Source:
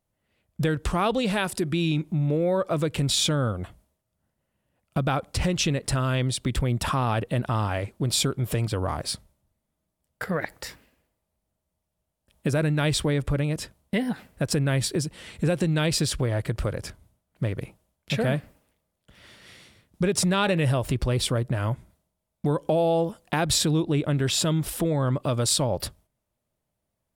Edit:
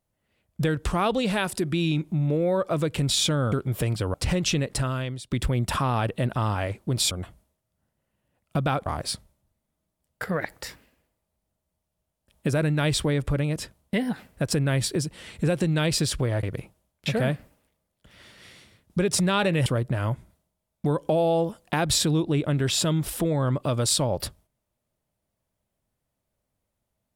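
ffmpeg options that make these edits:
-filter_complex "[0:a]asplit=8[a][b][c][d][e][f][g][h];[a]atrim=end=3.522[i];[b]atrim=start=8.238:end=8.862[j];[c]atrim=start=5.268:end=6.44,asetpts=PTS-STARTPTS,afade=t=out:st=0.592:d=0.58:silence=0.11885[k];[d]atrim=start=6.44:end=8.242,asetpts=PTS-STARTPTS,afade=t=in:d=0.004:c=hsin:silence=0.11885[l];[e]atrim=start=3.518:end=5.272[m];[f]atrim=start=8.858:end=16.432[n];[g]atrim=start=17.468:end=20.702[o];[h]atrim=start=21.258[p];[i][j]acrossfade=d=0.004:c1=hsin:c2=hsin[q];[k][l]concat=n=2:v=0:a=1[r];[q][r]acrossfade=d=0.004:c1=hsin:c2=hsin[s];[s][m]acrossfade=d=0.004:c1=hsin:c2=hsin[t];[t][n]acrossfade=d=0.004:c1=hsin:c2=hsin[u];[u][o]acrossfade=d=0.004:c1=hsin:c2=hsin[v];[v][p]acrossfade=d=0.004:c1=hsin:c2=hsin"

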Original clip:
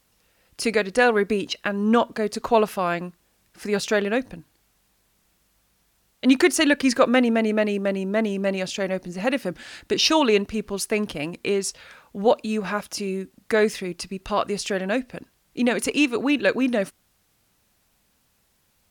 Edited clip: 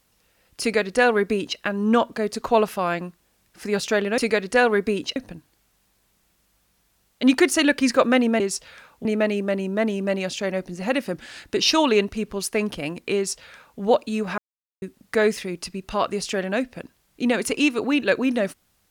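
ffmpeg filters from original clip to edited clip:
-filter_complex "[0:a]asplit=7[a][b][c][d][e][f][g];[a]atrim=end=4.182[h];[b]atrim=start=0.608:end=1.592[i];[c]atrim=start=4.178:end=7.422[j];[d]atrim=start=11.528:end=12.182[k];[e]atrim=start=7.418:end=12.75,asetpts=PTS-STARTPTS,afade=t=out:st=5.328:d=0.004:c=hsin[l];[f]atrim=start=12.75:end=13.19,asetpts=PTS-STARTPTS,volume=0[m];[g]atrim=start=13.19,asetpts=PTS-STARTPTS,afade=t=in:d=0.004:c=hsin[n];[h][i]acrossfade=d=0.004:c1=hsin:c2=hsin[o];[o][j]acrossfade=d=0.004:c1=hsin:c2=hsin[p];[p][k]acrossfade=d=0.004:c1=hsin:c2=hsin[q];[l][m][n]concat=n=3:v=0:a=1[r];[q][r]acrossfade=d=0.004:c1=hsin:c2=hsin"

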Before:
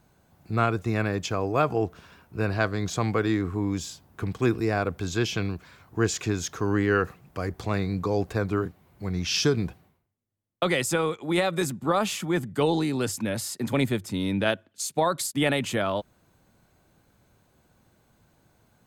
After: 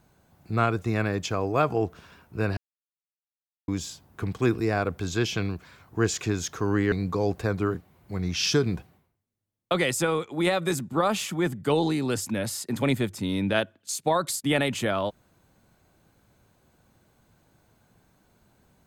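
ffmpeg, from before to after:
-filter_complex "[0:a]asplit=4[a][b][c][d];[a]atrim=end=2.57,asetpts=PTS-STARTPTS,afade=t=out:st=2.566:d=0.004:c=hsin[e];[b]atrim=start=2.57:end=3.68,asetpts=PTS-STARTPTS,volume=0[f];[c]atrim=start=3.68:end=6.922,asetpts=PTS-STARTPTS,afade=t=in:d=0.004:c=hsin[g];[d]atrim=start=7.828[h];[e][f][g]concat=n=3:v=0:a=1[i];[i][h]acrossfade=d=0.004:c1=hsin:c2=hsin"

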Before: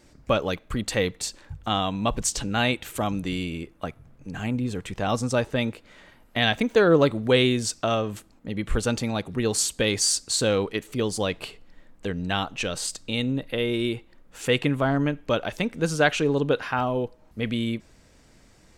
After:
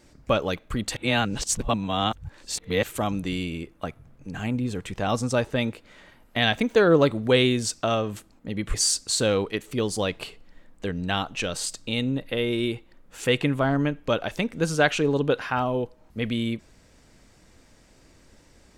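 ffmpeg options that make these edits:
-filter_complex "[0:a]asplit=4[a][b][c][d];[a]atrim=end=0.962[e];[b]atrim=start=0.958:end=2.832,asetpts=PTS-STARTPTS,areverse[f];[c]atrim=start=2.828:end=8.742[g];[d]atrim=start=9.948[h];[e][f]acrossfade=d=0.004:c1=hsin:c2=hsin[i];[i][g]acrossfade=d=0.004:c1=hsin:c2=hsin[j];[j][h]acrossfade=d=0.004:c1=hsin:c2=hsin"

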